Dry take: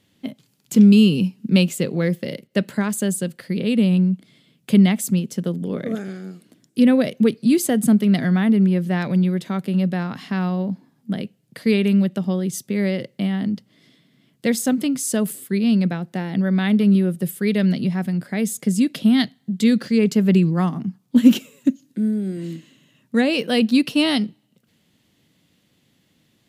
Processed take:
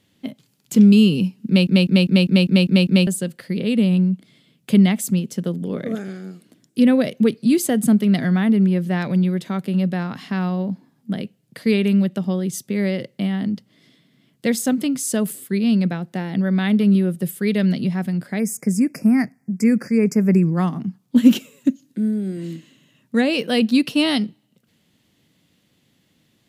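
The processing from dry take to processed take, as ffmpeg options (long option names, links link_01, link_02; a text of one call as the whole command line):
ffmpeg -i in.wav -filter_complex "[0:a]asplit=3[link_01][link_02][link_03];[link_01]afade=type=out:start_time=18.38:duration=0.02[link_04];[link_02]asuperstop=centerf=3500:order=12:qfactor=1.5,afade=type=in:start_time=18.38:duration=0.02,afade=type=out:start_time=20.55:duration=0.02[link_05];[link_03]afade=type=in:start_time=20.55:duration=0.02[link_06];[link_04][link_05][link_06]amix=inputs=3:normalize=0,asplit=9[link_07][link_08][link_09][link_10][link_11][link_12][link_13][link_14][link_15];[link_07]atrim=end=1.672[link_16];[link_08]atrim=start=1.468:end=1.672[link_17];[link_09]atrim=start=1.468:end=1.672[link_18];[link_10]atrim=start=1.468:end=1.672[link_19];[link_11]atrim=start=1.468:end=1.672[link_20];[link_12]atrim=start=1.468:end=1.672[link_21];[link_13]atrim=start=1.468:end=1.672[link_22];[link_14]atrim=start=1.468:end=1.672[link_23];[link_15]atrim=start=3.068[link_24];[link_16][link_17]acrossfade=duration=0.004:curve1=hsin:curve2=hsin[link_25];[link_25][link_18]acrossfade=duration=0.004:curve1=hsin:curve2=hsin[link_26];[link_26][link_19]acrossfade=duration=0.004:curve1=hsin:curve2=hsin[link_27];[link_27][link_20]acrossfade=duration=0.004:curve1=hsin:curve2=hsin[link_28];[link_28][link_21]acrossfade=duration=0.004:curve1=hsin:curve2=hsin[link_29];[link_29][link_22]acrossfade=duration=0.004:curve1=hsin:curve2=hsin[link_30];[link_30][link_23]acrossfade=duration=0.004:curve1=hsin:curve2=hsin[link_31];[link_31][link_24]acrossfade=duration=0.004:curve1=hsin:curve2=hsin" out.wav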